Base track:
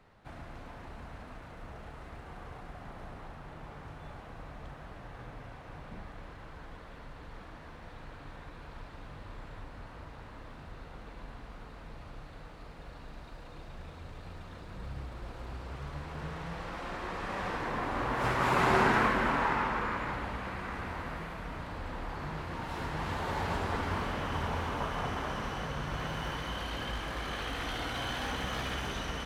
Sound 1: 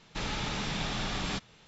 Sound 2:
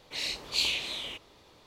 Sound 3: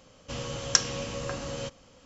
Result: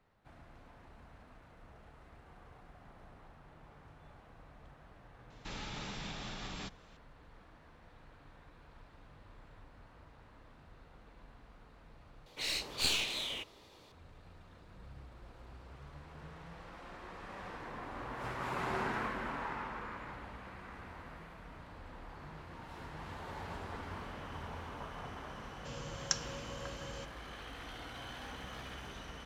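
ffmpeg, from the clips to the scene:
ffmpeg -i bed.wav -i cue0.wav -i cue1.wav -i cue2.wav -filter_complex "[0:a]volume=-11dB[link_01];[1:a]alimiter=level_in=3dB:limit=-24dB:level=0:latency=1:release=309,volume=-3dB[link_02];[2:a]aeval=exprs='clip(val(0),-1,0.0168)':channel_layout=same[link_03];[link_01]asplit=2[link_04][link_05];[link_04]atrim=end=12.264[link_06];[link_03]atrim=end=1.66,asetpts=PTS-STARTPTS,volume=-1dB[link_07];[link_05]atrim=start=13.916[link_08];[link_02]atrim=end=1.67,asetpts=PTS-STARTPTS,volume=-6dB,afade=type=in:duration=0.004:curve=hsin,afade=type=out:start_time=1.666:duration=0.004:curve=hsin,adelay=5300[link_09];[3:a]atrim=end=2.05,asetpts=PTS-STARTPTS,volume=-11.5dB,afade=type=in:duration=0.004:curve=hsin,afade=type=out:start_time=2.046:duration=0.004:curve=hsin,adelay=1118376S[link_10];[link_06][link_07]acrossfade=duration=0.004:curve1=hsin:curve2=hsin[link_11];[link_11][link_08]acrossfade=duration=0.004:curve1=hsin:curve2=hsin[link_12];[link_12][link_09][link_10]amix=inputs=3:normalize=0" out.wav

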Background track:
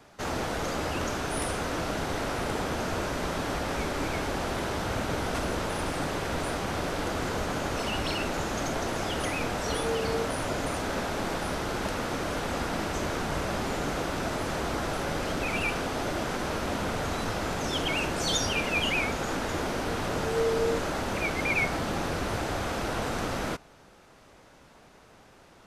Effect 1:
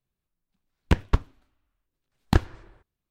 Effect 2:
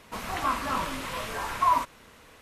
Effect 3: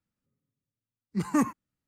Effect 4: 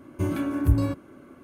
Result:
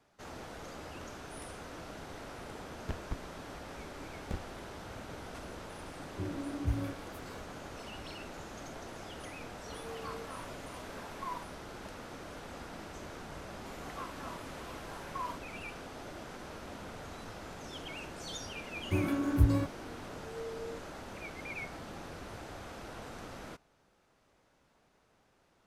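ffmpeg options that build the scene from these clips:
ffmpeg -i bed.wav -i cue0.wav -i cue1.wav -i cue2.wav -i cue3.wav -filter_complex "[4:a]asplit=2[link_01][link_02];[2:a]asplit=2[link_03][link_04];[0:a]volume=-15dB[link_05];[1:a]asoftclip=type=tanh:threshold=-19dB[link_06];[link_01]acrossover=split=1100[link_07][link_08];[link_08]adelay=490[link_09];[link_07][link_09]amix=inputs=2:normalize=0[link_10];[link_03]aeval=exprs='if(lt(val(0),0),0.708*val(0),val(0))':channel_layout=same[link_11];[link_06]atrim=end=3.1,asetpts=PTS-STARTPTS,volume=-10.5dB,afade=type=in:duration=0.004:curve=hsin,afade=type=out:start_time=3.096:duration=0.004:curve=hsin,adelay=1980[link_12];[link_10]atrim=end=1.43,asetpts=PTS-STARTPTS,volume=-12dB,afade=type=in:duration=0.004:curve=hsin,afade=type=out:start_time=1.426:duration=0.004:curve=hsin,adelay=5990[link_13];[link_11]atrim=end=2.41,asetpts=PTS-STARTPTS,volume=-17dB,afade=type=in:duration=0.004:curve=hsin,afade=type=out:start_time=2.406:duration=0.004:curve=hsin,adelay=9600[link_14];[link_04]atrim=end=2.41,asetpts=PTS-STARTPTS,volume=-17dB,afade=type=in:duration=0.004:curve=hsin,afade=type=out:start_time=2.406:duration=0.004:curve=hsin,adelay=13530[link_15];[link_02]atrim=end=1.43,asetpts=PTS-STARTPTS,volume=-4.5dB,afade=type=in:duration=0.004:curve=hsin,afade=type=out:start_time=1.426:duration=0.004:curve=hsin,adelay=18720[link_16];[link_05][link_12][link_13][link_14][link_15][link_16]amix=inputs=6:normalize=0" out.wav

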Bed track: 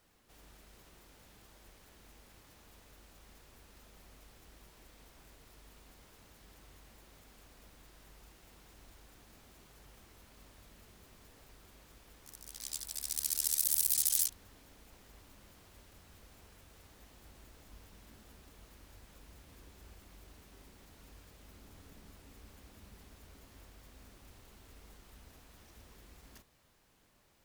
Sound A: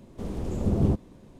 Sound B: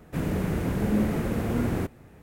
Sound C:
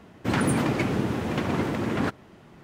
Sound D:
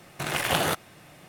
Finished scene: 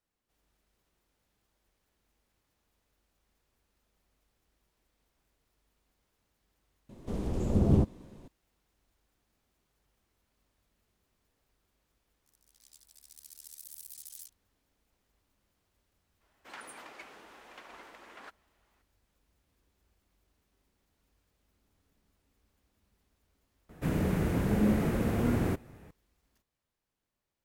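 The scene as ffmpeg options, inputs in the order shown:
ffmpeg -i bed.wav -i cue0.wav -i cue1.wav -i cue2.wav -filter_complex "[0:a]volume=-18dB[link_01];[3:a]highpass=770[link_02];[1:a]atrim=end=1.39,asetpts=PTS-STARTPTS,volume=-1dB,afade=type=in:duration=0.004:curve=hsin,afade=type=out:start_time=1.386:duration=0.004:curve=hsin,adelay=6890[link_03];[link_02]atrim=end=2.63,asetpts=PTS-STARTPTS,volume=-17dB,afade=type=in:duration=0.02,afade=type=out:start_time=2.61:duration=0.02,adelay=714420S[link_04];[2:a]atrim=end=2.22,asetpts=PTS-STARTPTS,volume=-2dB,afade=type=in:duration=0.004:curve=hsin,afade=type=out:start_time=2.216:duration=0.004:curve=hsin,adelay=23690[link_05];[link_01][link_03][link_04][link_05]amix=inputs=4:normalize=0" out.wav

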